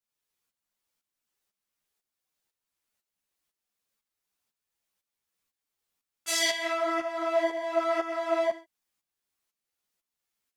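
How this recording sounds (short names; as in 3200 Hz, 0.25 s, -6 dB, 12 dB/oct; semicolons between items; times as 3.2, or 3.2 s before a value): tremolo saw up 2 Hz, depth 70%; a shimmering, thickened sound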